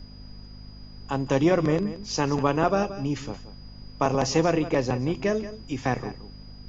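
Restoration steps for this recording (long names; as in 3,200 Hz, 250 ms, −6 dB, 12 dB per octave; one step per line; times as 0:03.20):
hum removal 50.8 Hz, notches 5
notch filter 4,900 Hz, Q 30
noise reduction from a noise print 27 dB
echo removal 176 ms −14 dB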